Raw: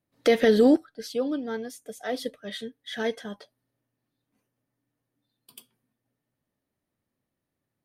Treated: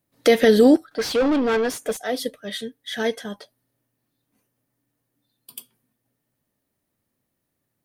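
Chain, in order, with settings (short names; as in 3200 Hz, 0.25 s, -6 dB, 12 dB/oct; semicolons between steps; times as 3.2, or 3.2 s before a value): high shelf 7700 Hz +9 dB; 0.91–1.97 overdrive pedal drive 27 dB, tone 1800 Hz, clips at -17 dBFS; gain +4.5 dB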